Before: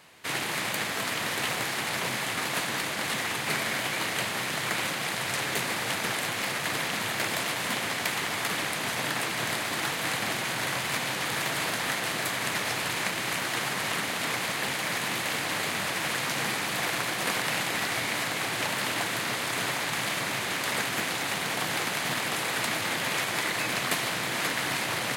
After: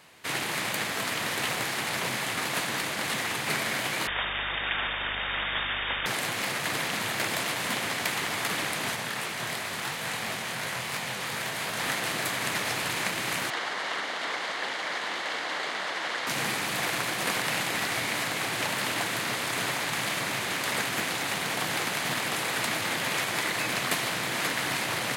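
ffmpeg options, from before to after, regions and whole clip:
ffmpeg -i in.wav -filter_complex "[0:a]asettb=1/sr,asplit=3[link_01][link_02][link_03];[link_01]atrim=end=4.074[link_04];[link_02]atrim=start=4.07:end=6.06,asetpts=PTS-STARTPTS,afade=type=in:duration=0.004:curve=qsin,afade=type=out:start_time=1.986:duration=0.004:curve=qsin,aemphasis=mode=production:type=50fm,lowpass=frequency=3200:width_type=q:width=0.5098,lowpass=frequency=3200:width_type=q:width=0.6013,lowpass=frequency=3200:width_type=q:width=0.9,lowpass=frequency=3200:width_type=q:width=2.563,afreqshift=-3800,aeval=exprs='val(0)+0.00562*(sin(2*PI*50*n/s)+sin(2*PI*2*50*n/s)/2+sin(2*PI*3*50*n/s)/3+sin(2*PI*4*50*n/s)/4+sin(2*PI*5*50*n/s)/5)':channel_layout=same[link_05];[link_03]atrim=start=6.056[link_06];[link_04][link_05]acrossfade=duration=0.004:curve1=hsin:curve2=qsin[link_07];[link_07][link_06]acrossfade=duration=0.004:curve1=qsin:curve2=hsin,asettb=1/sr,asplit=3[link_08][link_09][link_10];[link_08]atrim=end=8.964[link_11];[link_09]atrim=start=8.96:end=11.77,asetpts=PTS-STARTPTS,afade=type=in:duration=0.004:curve=qsin,afade=type=out:start_time=2.806:duration=0.004:curve=qsin,flanger=delay=18.5:depth=7.5:speed=2.9,bandreject=frequency=310:width=5.8[link_12];[link_10]atrim=start=11.766[link_13];[link_11][link_12]acrossfade=duration=0.004:curve1=hsin:curve2=qsin[link_14];[link_14][link_13]acrossfade=duration=0.004:curve1=qsin:curve2=hsin,asettb=1/sr,asplit=3[link_15][link_16][link_17];[link_15]atrim=end=13.504[link_18];[link_16]atrim=start=13.5:end=16.27,asetpts=PTS-STARTPTS,afade=type=in:duration=0.004:curve=qsin,afade=type=out:start_time=2.766:duration=0.004:curve=qsin,highpass=400,lowpass=4500,equalizer=frequency=2500:width=6.6:gain=-7.5[link_19];[link_17]atrim=start=16.266[link_20];[link_18][link_19]acrossfade=duration=0.004:curve1=hsin:curve2=qsin[link_21];[link_21][link_20]acrossfade=duration=0.004:curve1=qsin:curve2=hsin" out.wav

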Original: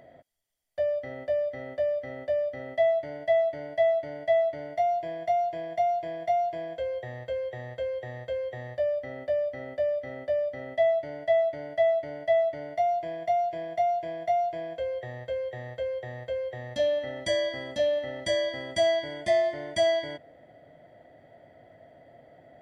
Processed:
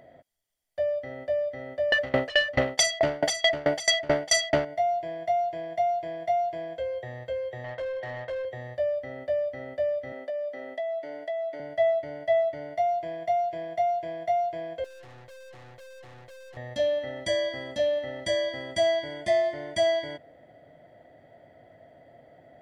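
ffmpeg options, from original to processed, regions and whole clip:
ffmpeg -i in.wav -filter_complex "[0:a]asettb=1/sr,asplit=3[link_01][link_02][link_03];[link_01]atrim=end=1.924[link_04];[link_02]atrim=start=1.92:end=4.65,asetpts=PTS-STARTPTS,afade=type=in:duration=0.004:curve=qsin,afade=type=out:start_time=2.726:duration=0.004:curve=qsin,aeval=exprs='0.2*sin(PI/2*8.91*val(0)/0.2)':channel_layout=same,aeval=exprs='val(0)*pow(10,-26*if(lt(mod(4.6*n/s,1),2*abs(4.6)/1000),1-mod(4.6*n/s,1)/(2*abs(4.6)/1000),(mod(4.6*n/s,1)-2*abs(4.6)/1000)/(1-2*abs(4.6)/1000))/20)':channel_layout=same[link_05];[link_03]atrim=start=4.646[link_06];[link_04][link_05]acrossfade=duration=0.004:curve1=hsin:curve2=qsin[link_07];[link_07][link_06]acrossfade=duration=0.004:curve1=qsin:curve2=hsin,asettb=1/sr,asplit=3[link_08][link_09][link_10];[link_08]atrim=end=7.644[link_11];[link_09]atrim=start=7.64:end=8.45,asetpts=PTS-STARTPTS,afade=type=in:duration=0.004:curve=qsin,afade=type=out:start_time=0.806:duration=0.004:curve=qsin,lowpass=4000,equalizer=frequency=450:width=3.4:gain=-7.5,asplit=2[link_12][link_13];[link_13]highpass=frequency=720:poles=1,volume=20dB,asoftclip=type=tanh:threshold=-26dB[link_14];[link_12][link_14]amix=inputs=2:normalize=0,lowpass=frequency=1500:poles=1,volume=-6dB[link_15];[link_10]atrim=start=8.446[link_16];[link_11][link_15]acrossfade=duration=0.004:curve1=hsin:curve2=qsin[link_17];[link_17][link_16]acrossfade=duration=0.004:curve1=qsin:curve2=hsin,asettb=1/sr,asplit=3[link_18][link_19][link_20];[link_18]atrim=end=10.124[link_21];[link_19]atrim=start=10.12:end=11.6,asetpts=PTS-STARTPTS,afade=type=in:duration=0.004:curve=qsin,afade=type=out:start_time=1.476:duration=0.004:curve=qsin,highpass=frequency=230:width=0.5412,highpass=frequency=230:width=1.3066,acompressor=threshold=-29dB:ratio=6:attack=3.2:release=140:knee=1:detection=peak[link_22];[link_20]atrim=start=11.596[link_23];[link_21][link_22]acrossfade=duration=0.004:curve1=hsin:curve2=qsin[link_24];[link_24][link_23]acrossfade=duration=0.004:curve1=qsin:curve2=hsin,asettb=1/sr,asplit=3[link_25][link_26][link_27];[link_25]atrim=end=14.844[link_28];[link_26]atrim=start=14.84:end=16.57,asetpts=PTS-STARTPTS,afade=type=in:duration=0.004:curve=qsin,afade=type=out:start_time=1.726:duration=0.004:curve=qsin,aecho=1:1:5.6:0.95,atrim=end_sample=76293,aeval=exprs='(tanh(224*val(0)+0.5)-tanh(0.5))/224':channel_layout=same[link_29];[link_27]atrim=start=16.566[link_30];[link_28][link_29]acrossfade=duration=0.004:curve1=hsin:curve2=qsin[link_31];[link_31][link_30]acrossfade=duration=0.004:curve1=qsin:curve2=hsin" out.wav

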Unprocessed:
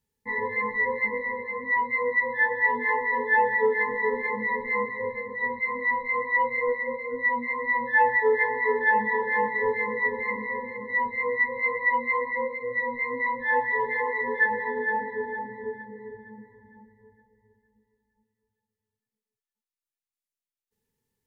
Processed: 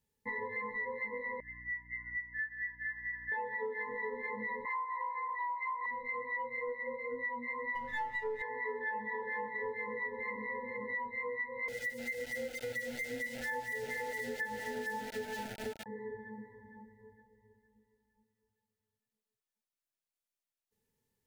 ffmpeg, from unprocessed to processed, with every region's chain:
ffmpeg -i in.wav -filter_complex "[0:a]asettb=1/sr,asplit=3[link_01][link_02][link_03];[link_01]atrim=end=1.404[link_04];[link_02]atrim=start=1.4:end=3.32,asetpts=PTS-STARTPTS,afade=type=in:duration=0.004:curve=qsin,afade=type=out:start_time=1.916:duration=0.004:curve=qsin,asuperpass=centerf=1600:order=8:qfactor=2.6,aeval=exprs='val(0)+0.00251*(sin(2*PI*60*n/s)+sin(2*PI*2*60*n/s)/2+sin(2*PI*3*60*n/s)/3+sin(2*PI*4*60*n/s)/4+sin(2*PI*5*60*n/s)/5)':channel_layout=same[link_05];[link_03]atrim=start=3.316[link_06];[link_04][link_05]acrossfade=duration=0.004:curve1=hsin:curve2=qsin[link_07];[link_07][link_06]acrossfade=duration=0.004:curve1=qsin:curve2=hsin,asettb=1/sr,asplit=3[link_08][link_09][link_10];[link_08]atrim=end=4.654[link_11];[link_09]atrim=start=4.65:end=5.86,asetpts=PTS-STARTPTS,afade=type=in:duration=0.004:curve=qsin,afade=type=out:start_time=1.206:duration=0.004:curve=qsin,highpass=frequency=1000:width_type=q:width=10,acompressor=threshold=-20dB:ratio=2.5:attack=3.2:release=140:knee=1:detection=peak[link_12];[link_10]atrim=start=5.856[link_13];[link_11][link_12]acrossfade=duration=0.004:curve1=hsin:curve2=qsin[link_14];[link_14][link_13]acrossfade=duration=0.004:curve1=qsin:curve2=hsin,asettb=1/sr,asplit=3[link_15][link_16][link_17];[link_15]atrim=end=7.754[link_18];[link_16]atrim=start=7.75:end=8.42,asetpts=PTS-STARTPTS,afade=type=in:duration=0.004:curve=qsin,afade=type=out:start_time=0.666:duration=0.004:curve=qsin,aeval=exprs='if(lt(val(0),0),0.708*val(0),val(0))':channel_layout=same,aecho=1:1:7.1:0.7,atrim=end_sample=29547,aeval=exprs='val(0)+0.00447*(sin(2*PI*50*n/s)+sin(2*PI*2*50*n/s)/2+sin(2*PI*3*50*n/s)/3+sin(2*PI*4*50*n/s)/4+sin(2*PI*5*50*n/s)/5)':channel_layout=same[link_19];[link_17]atrim=start=8.416[link_20];[link_18][link_19]acrossfade=duration=0.004:curve1=hsin:curve2=qsin[link_21];[link_21][link_20]acrossfade=duration=0.004:curve1=qsin:curve2=hsin,asettb=1/sr,asplit=3[link_22][link_23][link_24];[link_22]atrim=end=11.684[link_25];[link_23]atrim=start=11.68:end=15.86,asetpts=PTS-STARTPTS,afade=type=in:duration=0.004:curve=qsin,afade=type=out:start_time=4.176:duration=0.004:curve=qsin,bass=frequency=250:gain=11,treble=frequency=4000:gain=10,aeval=exprs='val(0)*gte(abs(val(0)),0.0237)':channel_layout=same,asuperstop=centerf=1100:order=20:qfactor=2.8[link_26];[link_24]atrim=start=15.856[link_27];[link_25][link_26]acrossfade=duration=0.004:curve1=hsin:curve2=qsin[link_28];[link_28][link_27]acrossfade=duration=0.004:curve1=qsin:curve2=hsin,equalizer=frequency=610:width_type=o:width=0.29:gain=5,acompressor=threshold=-35dB:ratio=5,volume=-2dB" out.wav

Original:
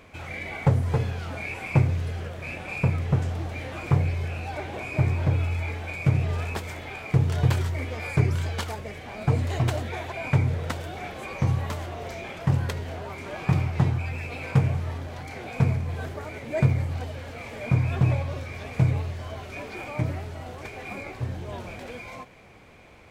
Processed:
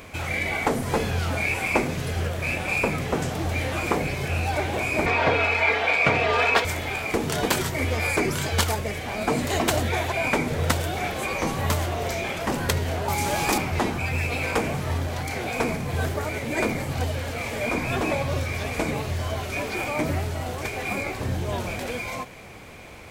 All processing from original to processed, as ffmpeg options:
ffmpeg -i in.wav -filter_complex "[0:a]asettb=1/sr,asplit=3[link_01][link_02][link_03];[link_01]atrim=end=5.064[link_04];[link_02]atrim=start=5.06:end=6.65,asetpts=PTS-STARTPTS,afade=type=in:duration=0.004:curve=qsin,afade=type=out:start_time=1.586:duration=0.004:curve=qsin,acrossover=split=390 4500:gain=0.0891 1 0.0794[link_05][link_06][link_07];[link_05][link_06][link_07]amix=inputs=3:normalize=0,aecho=1:1:4.3:0.53,atrim=end_sample=70119,acontrast=90[link_08];[link_03]atrim=start=6.646[link_09];[link_04][link_08]acrossfade=duration=0.004:curve1=hsin:curve2=qsin[link_10];[link_10][link_09]acrossfade=duration=0.004:curve1=qsin:curve2=hsin,asettb=1/sr,asplit=3[link_11][link_12][link_13];[link_11]atrim=end=13.084[link_14];[link_12]atrim=start=13.08:end=13.58,asetpts=PTS-STARTPTS,afade=type=in:duration=0.004:curve=qsin,afade=type=out:start_time=0.496:duration=0.004:curve=qsin,bass=frequency=250:gain=5,treble=frequency=4000:gain=11,aeval=exprs='val(0)+0.0631*sin(2*PI*830*n/s)':channel_layout=same[link_15];[link_13]atrim=start=13.576[link_16];[link_14][link_15]acrossfade=duration=0.004:curve1=hsin:curve2=qsin[link_17];[link_17][link_16]acrossfade=duration=0.004:curve1=qsin:curve2=hsin,afftfilt=real='re*lt(hypot(re,im),0.398)':imag='im*lt(hypot(re,im),0.398)':win_size=1024:overlap=0.75,highshelf=frequency=6400:gain=10.5,volume=7.5dB" out.wav

